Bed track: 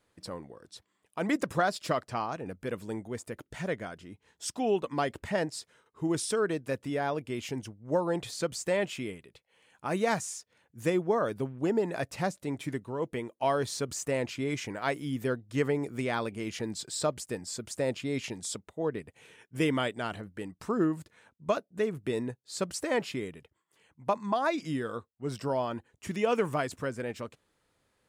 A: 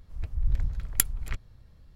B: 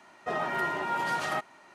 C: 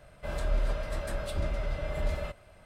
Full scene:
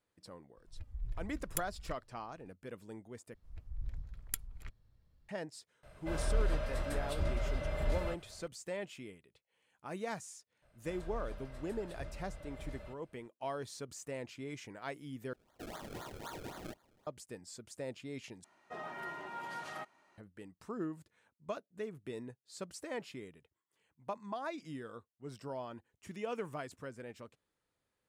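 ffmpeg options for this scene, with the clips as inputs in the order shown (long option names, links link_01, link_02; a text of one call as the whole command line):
ffmpeg -i bed.wav -i cue0.wav -i cue1.wav -i cue2.wav -filter_complex "[1:a]asplit=2[link_01][link_02];[3:a]asplit=2[link_03][link_04];[2:a]asplit=2[link_05][link_06];[0:a]volume=-12dB[link_07];[link_01]asplit=2[link_08][link_09];[link_09]adelay=2.2,afreqshift=-2.4[link_10];[link_08][link_10]amix=inputs=2:normalize=1[link_11];[link_05]acrusher=samples=32:mix=1:aa=0.000001:lfo=1:lforange=32:lforate=3.9[link_12];[link_07]asplit=4[link_13][link_14][link_15][link_16];[link_13]atrim=end=3.344[link_17];[link_02]atrim=end=1.95,asetpts=PTS-STARTPTS,volume=-15dB[link_18];[link_14]atrim=start=5.286:end=15.334[link_19];[link_12]atrim=end=1.74,asetpts=PTS-STARTPTS,volume=-15.5dB[link_20];[link_15]atrim=start=17.066:end=18.444[link_21];[link_06]atrim=end=1.74,asetpts=PTS-STARTPTS,volume=-13.5dB[link_22];[link_16]atrim=start=20.176[link_23];[link_11]atrim=end=1.95,asetpts=PTS-STARTPTS,volume=-12dB,afade=type=in:duration=0.004:curve=hsin,afade=type=out:start_time=1.946:duration=0.004:curve=hsin,adelay=570[link_24];[link_03]atrim=end=2.65,asetpts=PTS-STARTPTS,volume=-3dB,afade=type=in:duration=0.004:curve=hsin,afade=type=out:start_time=2.646:duration=0.004:curve=hsin,adelay=5830[link_25];[link_04]atrim=end=2.65,asetpts=PTS-STARTPTS,volume=-15.5dB,afade=type=in:duration=0.004:curve=hsin,afade=type=out:start_time=2.646:duration=0.004:curve=hsin,adelay=10620[link_26];[link_17][link_18]acrossfade=duration=0.004:curve1=hsin:curve2=hsin[link_27];[link_27][link_19]acrossfade=duration=0.004:curve1=hsin:curve2=hsin[link_28];[link_28][link_20]acrossfade=duration=0.004:curve1=hsin:curve2=hsin[link_29];[link_29][link_21]acrossfade=duration=0.004:curve1=hsin:curve2=hsin[link_30];[link_30][link_22]acrossfade=duration=0.004:curve1=hsin:curve2=hsin[link_31];[link_31][link_23]acrossfade=duration=0.004:curve1=hsin:curve2=hsin[link_32];[link_32][link_24][link_25][link_26]amix=inputs=4:normalize=0" out.wav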